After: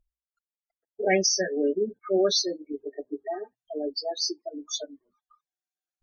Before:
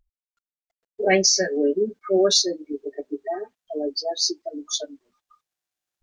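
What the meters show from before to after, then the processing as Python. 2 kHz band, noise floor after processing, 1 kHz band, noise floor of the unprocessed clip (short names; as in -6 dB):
-4.5 dB, under -85 dBFS, -4.0 dB, under -85 dBFS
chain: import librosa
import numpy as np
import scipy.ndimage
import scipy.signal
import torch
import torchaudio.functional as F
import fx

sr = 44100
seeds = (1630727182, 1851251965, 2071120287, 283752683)

y = fx.hum_notches(x, sr, base_hz=60, count=2)
y = fx.spec_topn(y, sr, count=32)
y = y * 10.0 ** (-4.0 / 20.0)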